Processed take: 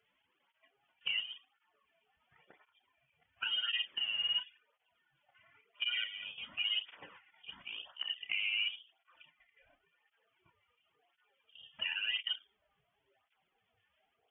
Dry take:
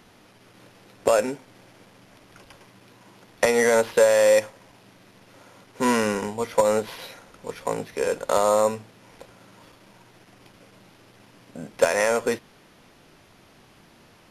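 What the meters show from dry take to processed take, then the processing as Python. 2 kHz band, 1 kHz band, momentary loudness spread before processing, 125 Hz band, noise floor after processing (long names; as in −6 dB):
−9.5 dB, −29.0 dB, 20 LU, below −30 dB, −81 dBFS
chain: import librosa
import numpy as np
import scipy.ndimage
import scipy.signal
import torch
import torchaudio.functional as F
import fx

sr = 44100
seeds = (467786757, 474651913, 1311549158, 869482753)

y = fx.spec_quant(x, sr, step_db=30)
y = fx.noise_reduce_blind(y, sr, reduce_db=13)
y = scipy.signal.sosfilt(scipy.signal.butter(2, 45.0, 'highpass', fs=sr, output='sos'), y)
y = fx.high_shelf(y, sr, hz=2600.0, db=12.0)
y = fx.hum_notches(y, sr, base_hz=50, count=5)
y = fx.level_steps(y, sr, step_db=11)
y = fx.dmg_crackle(y, sr, seeds[0], per_s=220.0, level_db=-57.0)
y = fx.env_lowpass_down(y, sr, base_hz=1200.0, full_db=-22.5)
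y = fx.doubler(y, sr, ms=30.0, db=-9.0)
y = fx.freq_invert(y, sr, carrier_hz=3400)
y = fx.flanger_cancel(y, sr, hz=0.94, depth_ms=3.3)
y = F.gain(torch.from_numpy(y), -8.5).numpy()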